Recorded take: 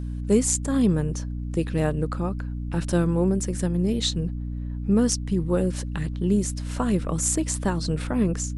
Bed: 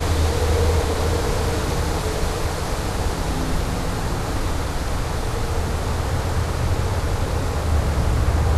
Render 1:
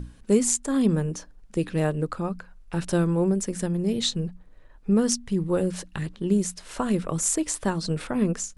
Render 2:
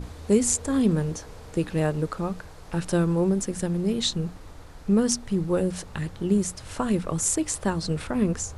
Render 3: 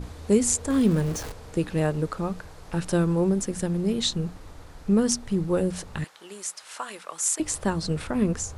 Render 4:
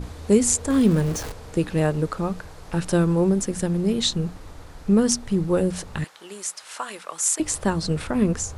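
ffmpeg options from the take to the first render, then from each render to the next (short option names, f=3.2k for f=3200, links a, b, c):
-af "bandreject=f=60:t=h:w=6,bandreject=f=120:t=h:w=6,bandreject=f=180:t=h:w=6,bandreject=f=240:t=h:w=6,bandreject=f=300:t=h:w=6"
-filter_complex "[1:a]volume=-22.5dB[a];[0:a][a]amix=inputs=2:normalize=0"
-filter_complex "[0:a]asettb=1/sr,asplit=3[a][b][c];[a]atrim=end=0.704[d];[b]atrim=start=0.7:end=1.32,asetpts=PTS-STARTPTS,afade=t=in:d=0.004:c=qsin,afade=t=out:st=0.616:d=0.004:c=qsin,aeval=exprs='val(0)+0.5*0.0224*sgn(val(0))':c=same[e];[c]atrim=start=1.316[f];[d][e]acrossfade=d=0.004:c1=hsin:c2=qsin[g];[g][f]acrossfade=d=0.004:c1=qsin:c2=hsin,asettb=1/sr,asplit=3[h][i][j];[h]atrim=end=6.044[k];[i]atrim=start=6.04:end=7.4,asetpts=PTS-STARTPTS,afade=t=in:d=0.004:c=qsin,afade=t=out:st=1.356:d=0.004:c=qsin,highpass=960[l];[j]atrim=start=7.396[m];[k][l]acrossfade=d=0.004:c1=hsin:c2=qsin[n];[n][m]acrossfade=d=0.004:c1=qsin:c2=hsin"
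-af "volume=3dB"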